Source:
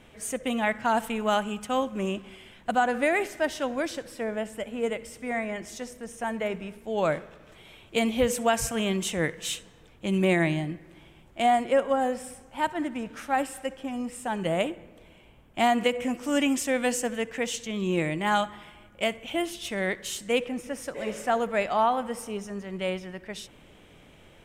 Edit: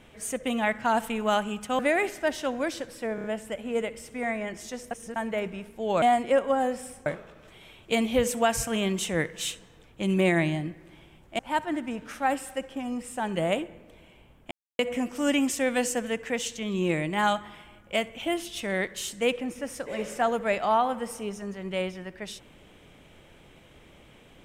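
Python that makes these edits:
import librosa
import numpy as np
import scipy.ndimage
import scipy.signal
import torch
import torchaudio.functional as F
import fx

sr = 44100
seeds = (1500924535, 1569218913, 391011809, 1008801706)

y = fx.edit(x, sr, fx.cut(start_s=1.79, length_s=1.17),
    fx.stutter(start_s=4.32, slice_s=0.03, count=4),
    fx.reverse_span(start_s=5.99, length_s=0.25),
    fx.move(start_s=11.43, length_s=1.04, to_s=7.1),
    fx.silence(start_s=15.59, length_s=0.28), tone=tone)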